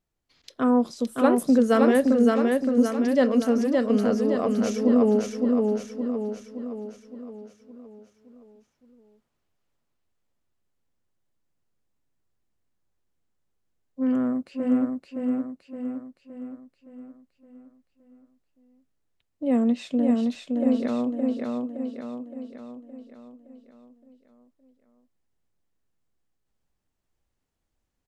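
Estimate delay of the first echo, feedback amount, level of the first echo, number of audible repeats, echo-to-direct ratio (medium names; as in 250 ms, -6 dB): 567 ms, 51%, -3.0 dB, 6, -1.5 dB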